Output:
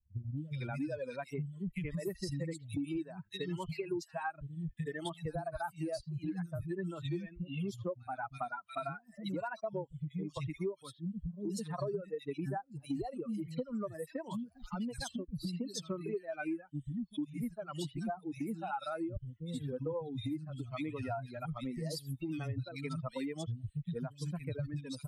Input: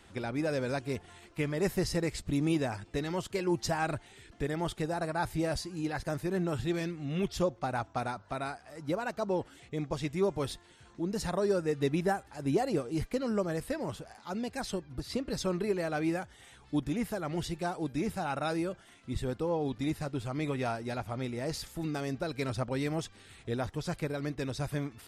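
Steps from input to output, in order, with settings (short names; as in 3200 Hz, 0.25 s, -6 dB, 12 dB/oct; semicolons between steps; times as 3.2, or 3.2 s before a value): per-bin expansion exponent 2; reverb removal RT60 1.4 s; harmonic-percussive split harmonic +8 dB; three bands offset in time lows, highs, mids 0.37/0.45 s, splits 190/2300 Hz; compressor 8:1, threshold -49 dBFS, peak gain reduction 28 dB; gain +13 dB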